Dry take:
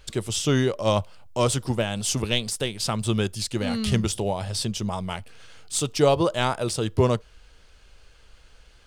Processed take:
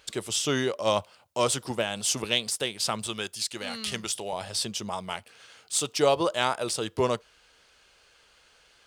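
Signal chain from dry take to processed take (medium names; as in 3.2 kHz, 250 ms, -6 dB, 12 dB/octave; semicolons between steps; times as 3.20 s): high-pass 470 Hz 6 dB/octave, from 3.07 s 1.2 kHz, from 4.33 s 520 Hz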